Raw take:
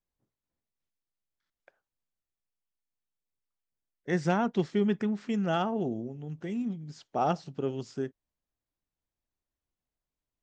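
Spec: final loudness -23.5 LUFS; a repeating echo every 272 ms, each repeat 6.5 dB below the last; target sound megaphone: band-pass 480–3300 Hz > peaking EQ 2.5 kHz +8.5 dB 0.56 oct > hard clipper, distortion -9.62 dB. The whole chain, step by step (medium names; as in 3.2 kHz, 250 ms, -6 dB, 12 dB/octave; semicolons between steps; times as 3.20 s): band-pass 480–3300 Hz; peaking EQ 2.5 kHz +8.5 dB 0.56 oct; feedback delay 272 ms, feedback 47%, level -6.5 dB; hard clipper -28.5 dBFS; trim +13.5 dB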